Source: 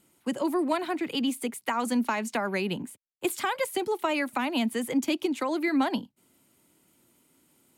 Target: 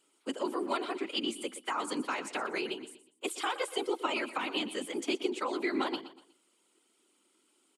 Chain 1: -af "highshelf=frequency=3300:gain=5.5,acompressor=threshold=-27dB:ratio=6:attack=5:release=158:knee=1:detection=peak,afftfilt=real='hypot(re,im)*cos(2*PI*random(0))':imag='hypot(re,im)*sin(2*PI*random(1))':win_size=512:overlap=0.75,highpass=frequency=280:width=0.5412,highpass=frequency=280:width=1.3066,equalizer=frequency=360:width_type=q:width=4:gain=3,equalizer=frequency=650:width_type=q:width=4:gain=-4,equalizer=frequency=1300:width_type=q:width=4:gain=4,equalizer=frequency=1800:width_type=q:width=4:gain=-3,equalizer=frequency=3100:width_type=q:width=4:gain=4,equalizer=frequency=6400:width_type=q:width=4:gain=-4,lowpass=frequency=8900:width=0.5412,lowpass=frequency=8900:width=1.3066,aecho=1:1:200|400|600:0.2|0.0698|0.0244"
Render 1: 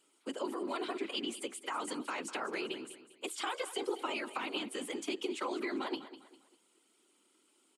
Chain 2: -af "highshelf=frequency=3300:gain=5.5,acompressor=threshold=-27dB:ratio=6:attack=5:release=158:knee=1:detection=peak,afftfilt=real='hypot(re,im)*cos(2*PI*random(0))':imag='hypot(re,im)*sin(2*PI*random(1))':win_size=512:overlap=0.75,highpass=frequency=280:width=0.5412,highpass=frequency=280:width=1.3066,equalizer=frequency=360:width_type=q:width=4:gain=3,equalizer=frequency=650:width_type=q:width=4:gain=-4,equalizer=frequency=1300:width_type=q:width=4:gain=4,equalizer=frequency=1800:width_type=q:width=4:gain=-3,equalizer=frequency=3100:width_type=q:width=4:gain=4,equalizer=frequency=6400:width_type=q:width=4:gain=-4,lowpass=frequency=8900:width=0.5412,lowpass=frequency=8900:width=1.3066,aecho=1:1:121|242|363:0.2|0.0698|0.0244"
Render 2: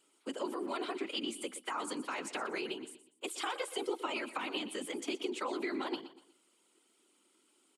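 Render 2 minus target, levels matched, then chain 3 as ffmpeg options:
downward compressor: peak gain reduction +8 dB
-af "highshelf=frequency=3300:gain=5.5,afftfilt=real='hypot(re,im)*cos(2*PI*random(0))':imag='hypot(re,im)*sin(2*PI*random(1))':win_size=512:overlap=0.75,highpass=frequency=280:width=0.5412,highpass=frequency=280:width=1.3066,equalizer=frequency=360:width_type=q:width=4:gain=3,equalizer=frequency=650:width_type=q:width=4:gain=-4,equalizer=frequency=1300:width_type=q:width=4:gain=4,equalizer=frequency=1800:width_type=q:width=4:gain=-3,equalizer=frequency=3100:width_type=q:width=4:gain=4,equalizer=frequency=6400:width_type=q:width=4:gain=-4,lowpass=frequency=8900:width=0.5412,lowpass=frequency=8900:width=1.3066,aecho=1:1:121|242|363:0.2|0.0698|0.0244"

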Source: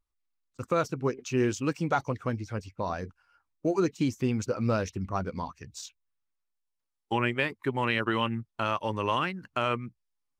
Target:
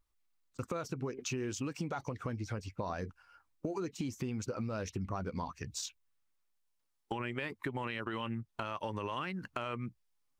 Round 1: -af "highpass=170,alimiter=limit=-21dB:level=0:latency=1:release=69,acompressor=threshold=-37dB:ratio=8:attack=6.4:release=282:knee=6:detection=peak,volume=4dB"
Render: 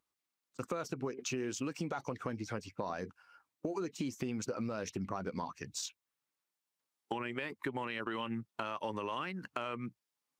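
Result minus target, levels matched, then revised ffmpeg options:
125 Hz band −4.5 dB
-af "alimiter=limit=-21dB:level=0:latency=1:release=69,acompressor=threshold=-37dB:ratio=8:attack=6.4:release=282:knee=6:detection=peak,volume=4dB"

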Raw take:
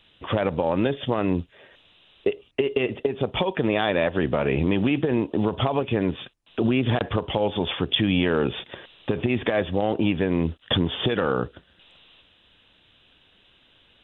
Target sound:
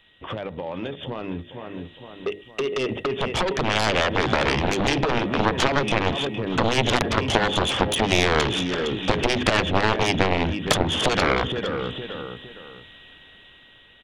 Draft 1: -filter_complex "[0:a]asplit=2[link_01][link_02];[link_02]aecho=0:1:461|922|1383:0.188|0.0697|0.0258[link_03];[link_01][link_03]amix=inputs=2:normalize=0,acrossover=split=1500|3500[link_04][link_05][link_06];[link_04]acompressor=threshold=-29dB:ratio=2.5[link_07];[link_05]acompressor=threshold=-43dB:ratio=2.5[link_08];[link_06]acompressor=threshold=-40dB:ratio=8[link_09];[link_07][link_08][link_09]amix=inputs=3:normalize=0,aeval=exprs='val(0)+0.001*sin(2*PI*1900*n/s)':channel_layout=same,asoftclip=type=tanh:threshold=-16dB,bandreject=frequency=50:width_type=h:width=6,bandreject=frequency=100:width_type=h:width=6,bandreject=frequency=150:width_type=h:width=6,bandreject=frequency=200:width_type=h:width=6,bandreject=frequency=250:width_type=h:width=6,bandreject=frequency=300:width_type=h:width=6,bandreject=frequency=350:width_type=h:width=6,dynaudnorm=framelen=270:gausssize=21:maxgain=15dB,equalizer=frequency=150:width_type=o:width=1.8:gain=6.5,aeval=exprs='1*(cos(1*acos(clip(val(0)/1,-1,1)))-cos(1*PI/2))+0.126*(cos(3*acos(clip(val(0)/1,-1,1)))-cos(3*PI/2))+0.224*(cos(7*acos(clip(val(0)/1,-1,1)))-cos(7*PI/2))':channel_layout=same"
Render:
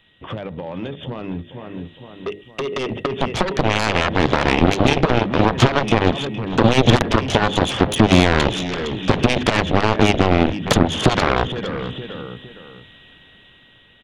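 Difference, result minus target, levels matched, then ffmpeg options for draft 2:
125 Hz band +3.0 dB
-filter_complex "[0:a]asplit=2[link_01][link_02];[link_02]aecho=0:1:461|922|1383:0.188|0.0697|0.0258[link_03];[link_01][link_03]amix=inputs=2:normalize=0,acrossover=split=1500|3500[link_04][link_05][link_06];[link_04]acompressor=threshold=-29dB:ratio=2.5[link_07];[link_05]acompressor=threshold=-43dB:ratio=2.5[link_08];[link_06]acompressor=threshold=-40dB:ratio=8[link_09];[link_07][link_08][link_09]amix=inputs=3:normalize=0,aeval=exprs='val(0)+0.001*sin(2*PI*1900*n/s)':channel_layout=same,asoftclip=type=tanh:threshold=-16dB,bandreject=frequency=50:width_type=h:width=6,bandreject=frequency=100:width_type=h:width=6,bandreject=frequency=150:width_type=h:width=6,bandreject=frequency=200:width_type=h:width=6,bandreject=frequency=250:width_type=h:width=6,bandreject=frequency=300:width_type=h:width=6,bandreject=frequency=350:width_type=h:width=6,dynaudnorm=framelen=270:gausssize=21:maxgain=15dB,aeval=exprs='1*(cos(1*acos(clip(val(0)/1,-1,1)))-cos(1*PI/2))+0.126*(cos(3*acos(clip(val(0)/1,-1,1)))-cos(3*PI/2))+0.224*(cos(7*acos(clip(val(0)/1,-1,1)))-cos(7*PI/2))':channel_layout=same"

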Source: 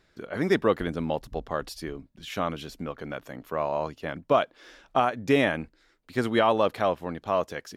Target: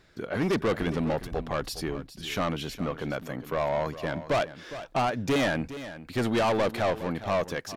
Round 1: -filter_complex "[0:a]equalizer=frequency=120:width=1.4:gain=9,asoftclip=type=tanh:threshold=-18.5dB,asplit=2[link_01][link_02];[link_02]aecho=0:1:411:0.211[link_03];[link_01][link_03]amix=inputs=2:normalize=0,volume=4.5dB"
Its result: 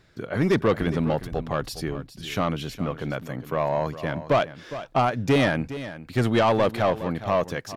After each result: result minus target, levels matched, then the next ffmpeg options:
soft clipping: distortion −6 dB; 125 Hz band +2.5 dB
-filter_complex "[0:a]equalizer=frequency=120:width=1.4:gain=9,asoftclip=type=tanh:threshold=-26dB,asplit=2[link_01][link_02];[link_02]aecho=0:1:411:0.211[link_03];[link_01][link_03]amix=inputs=2:normalize=0,volume=4.5dB"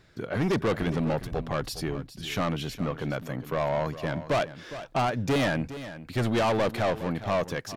125 Hz band +3.0 dB
-filter_complex "[0:a]equalizer=frequency=120:width=1.4:gain=3,asoftclip=type=tanh:threshold=-26dB,asplit=2[link_01][link_02];[link_02]aecho=0:1:411:0.211[link_03];[link_01][link_03]amix=inputs=2:normalize=0,volume=4.5dB"

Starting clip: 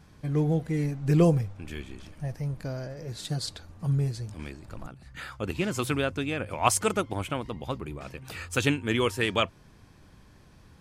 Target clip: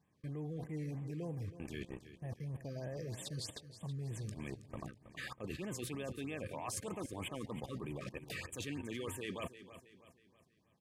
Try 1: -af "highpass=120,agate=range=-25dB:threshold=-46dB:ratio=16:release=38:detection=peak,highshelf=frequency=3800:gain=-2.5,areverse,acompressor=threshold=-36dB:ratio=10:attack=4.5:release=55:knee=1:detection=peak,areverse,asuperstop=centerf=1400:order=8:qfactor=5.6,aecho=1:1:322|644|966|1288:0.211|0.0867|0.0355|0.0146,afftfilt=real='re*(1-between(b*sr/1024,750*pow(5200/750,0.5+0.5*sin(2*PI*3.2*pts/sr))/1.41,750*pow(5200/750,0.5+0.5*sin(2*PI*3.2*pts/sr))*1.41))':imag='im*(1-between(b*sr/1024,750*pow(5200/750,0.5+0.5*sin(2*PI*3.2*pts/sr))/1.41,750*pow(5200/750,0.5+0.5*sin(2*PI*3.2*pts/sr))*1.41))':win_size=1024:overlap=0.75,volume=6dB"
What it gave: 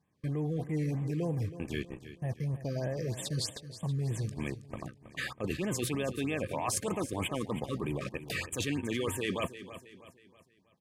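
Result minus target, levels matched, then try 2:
downward compressor: peak gain reduction −9.5 dB
-af "highpass=120,agate=range=-25dB:threshold=-46dB:ratio=16:release=38:detection=peak,highshelf=frequency=3800:gain=-2.5,areverse,acompressor=threshold=-46.5dB:ratio=10:attack=4.5:release=55:knee=1:detection=peak,areverse,asuperstop=centerf=1400:order=8:qfactor=5.6,aecho=1:1:322|644|966|1288:0.211|0.0867|0.0355|0.0146,afftfilt=real='re*(1-between(b*sr/1024,750*pow(5200/750,0.5+0.5*sin(2*PI*3.2*pts/sr))/1.41,750*pow(5200/750,0.5+0.5*sin(2*PI*3.2*pts/sr))*1.41))':imag='im*(1-between(b*sr/1024,750*pow(5200/750,0.5+0.5*sin(2*PI*3.2*pts/sr))/1.41,750*pow(5200/750,0.5+0.5*sin(2*PI*3.2*pts/sr))*1.41))':win_size=1024:overlap=0.75,volume=6dB"

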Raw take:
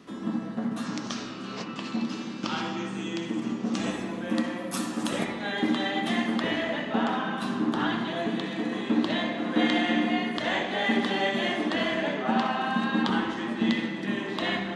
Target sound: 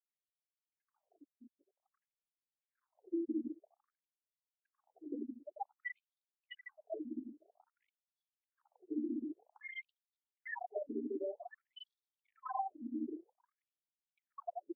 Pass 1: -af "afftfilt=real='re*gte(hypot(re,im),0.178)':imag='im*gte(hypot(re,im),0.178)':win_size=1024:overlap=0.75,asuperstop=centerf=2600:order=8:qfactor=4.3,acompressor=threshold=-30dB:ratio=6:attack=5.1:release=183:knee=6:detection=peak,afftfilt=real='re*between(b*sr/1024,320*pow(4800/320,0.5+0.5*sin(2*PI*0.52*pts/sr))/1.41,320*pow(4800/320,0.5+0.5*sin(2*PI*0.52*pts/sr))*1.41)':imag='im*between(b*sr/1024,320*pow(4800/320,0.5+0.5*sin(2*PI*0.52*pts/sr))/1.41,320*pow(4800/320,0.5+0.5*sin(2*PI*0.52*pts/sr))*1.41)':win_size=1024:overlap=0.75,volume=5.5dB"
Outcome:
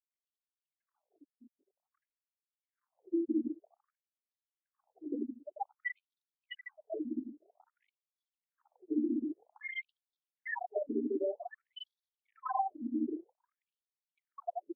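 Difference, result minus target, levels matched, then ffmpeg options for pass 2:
downward compressor: peak gain reduction −6 dB
-af "afftfilt=real='re*gte(hypot(re,im),0.178)':imag='im*gte(hypot(re,im),0.178)':win_size=1024:overlap=0.75,asuperstop=centerf=2600:order=8:qfactor=4.3,acompressor=threshold=-37.5dB:ratio=6:attack=5.1:release=183:knee=6:detection=peak,afftfilt=real='re*between(b*sr/1024,320*pow(4800/320,0.5+0.5*sin(2*PI*0.52*pts/sr))/1.41,320*pow(4800/320,0.5+0.5*sin(2*PI*0.52*pts/sr))*1.41)':imag='im*between(b*sr/1024,320*pow(4800/320,0.5+0.5*sin(2*PI*0.52*pts/sr))/1.41,320*pow(4800/320,0.5+0.5*sin(2*PI*0.52*pts/sr))*1.41)':win_size=1024:overlap=0.75,volume=5.5dB"

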